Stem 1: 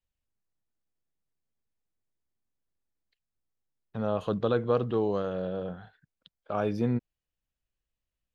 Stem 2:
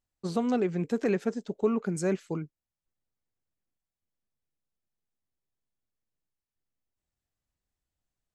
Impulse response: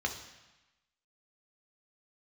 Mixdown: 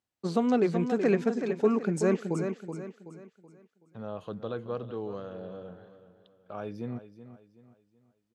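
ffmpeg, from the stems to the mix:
-filter_complex "[0:a]volume=-9dB,asplit=2[link_01][link_02];[link_02]volume=-13dB[link_03];[1:a]highpass=140,highshelf=frequency=6900:gain=-8.5,volume=2.5dB,asplit=2[link_04][link_05];[link_05]volume=-7.5dB[link_06];[link_03][link_06]amix=inputs=2:normalize=0,aecho=0:1:377|754|1131|1508|1885:1|0.37|0.137|0.0507|0.0187[link_07];[link_01][link_04][link_07]amix=inputs=3:normalize=0,highpass=61"

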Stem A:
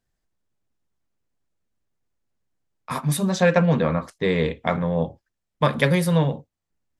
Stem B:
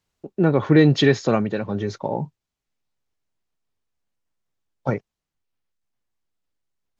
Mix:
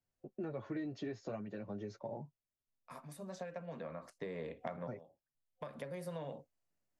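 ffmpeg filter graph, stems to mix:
ffmpeg -i stem1.wav -i stem2.wav -filter_complex "[0:a]highpass=frequency=190:poles=1,acompressor=threshold=-24dB:ratio=6,volume=-5dB,afade=type=in:start_time=3.99:duration=0.63:silence=0.298538[link_01];[1:a]lowshelf=frequency=460:gain=9,flanger=delay=7.9:depth=2.4:regen=0:speed=0.39:shape=sinusoidal,volume=-16.5dB,asplit=2[link_02][link_03];[link_03]apad=whole_len=308406[link_04];[link_01][link_04]sidechaincompress=threshold=-48dB:ratio=10:attack=10:release=1200[link_05];[link_05][link_02]amix=inputs=2:normalize=0,superequalizer=8b=1.78:13b=0.631,acrossover=split=220|1300[link_06][link_07][link_08];[link_06]acompressor=threshold=-53dB:ratio=4[link_09];[link_07]acompressor=threshold=-42dB:ratio=4[link_10];[link_08]acompressor=threshold=-56dB:ratio=4[link_11];[link_09][link_10][link_11]amix=inputs=3:normalize=0" out.wav

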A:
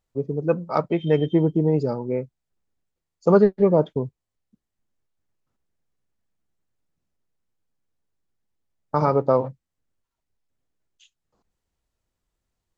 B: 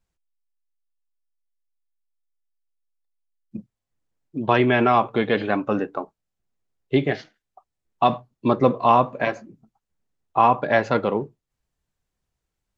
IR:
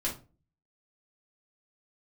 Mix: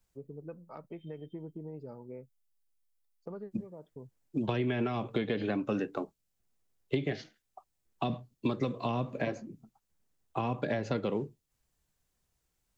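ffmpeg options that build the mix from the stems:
-filter_complex "[0:a]lowpass=3200,acompressor=threshold=-21dB:ratio=6,volume=-18dB[link_01];[1:a]highshelf=frequency=5700:gain=8.5,acrossover=split=150[link_02][link_03];[link_03]acompressor=threshold=-18dB:ratio=6[link_04];[link_02][link_04]amix=inputs=2:normalize=0,volume=0dB,asplit=2[link_05][link_06];[link_06]apad=whole_len=563558[link_07];[link_01][link_07]sidechaincompress=threshold=-36dB:ratio=3:attack=16:release=833[link_08];[link_08][link_05]amix=inputs=2:normalize=0,acrossover=split=520|1800[link_09][link_10][link_11];[link_09]acompressor=threshold=-29dB:ratio=4[link_12];[link_10]acompressor=threshold=-48dB:ratio=4[link_13];[link_11]acompressor=threshold=-43dB:ratio=4[link_14];[link_12][link_13][link_14]amix=inputs=3:normalize=0"

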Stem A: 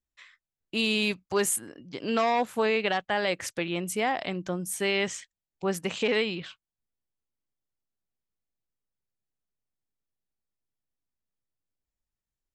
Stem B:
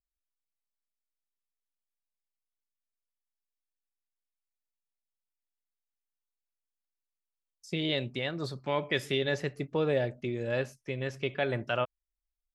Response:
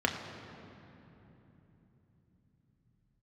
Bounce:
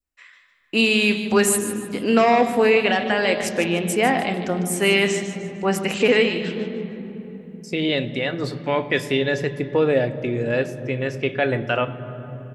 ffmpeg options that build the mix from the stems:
-filter_complex "[0:a]volume=-3.5dB,asplit=3[link_01][link_02][link_03];[link_02]volume=-7.5dB[link_04];[link_03]volume=-7.5dB[link_05];[1:a]volume=-1dB,asplit=2[link_06][link_07];[link_07]volume=-13dB[link_08];[2:a]atrim=start_sample=2205[link_09];[link_04][link_08]amix=inputs=2:normalize=0[link_10];[link_10][link_09]afir=irnorm=-1:irlink=0[link_11];[link_05]aecho=0:1:151|302|453|604|755:1|0.34|0.116|0.0393|0.0134[link_12];[link_01][link_06][link_11][link_12]amix=inputs=4:normalize=0,adynamicequalizer=threshold=0.0126:dfrequency=1100:dqfactor=0.87:tfrequency=1100:tqfactor=0.87:attack=5:release=100:ratio=0.375:range=2.5:mode=cutabove:tftype=bell,dynaudnorm=framelen=200:gausssize=3:maxgain=7dB"

